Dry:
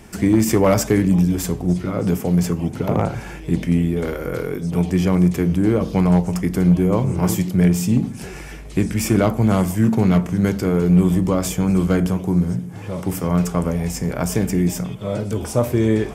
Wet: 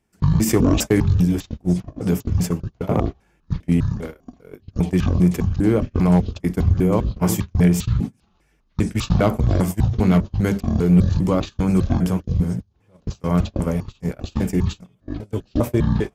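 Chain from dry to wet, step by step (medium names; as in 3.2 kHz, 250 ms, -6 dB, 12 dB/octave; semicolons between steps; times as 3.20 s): pitch shift switched off and on -12 st, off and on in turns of 200 ms; de-hum 197.9 Hz, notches 3; gate -21 dBFS, range -28 dB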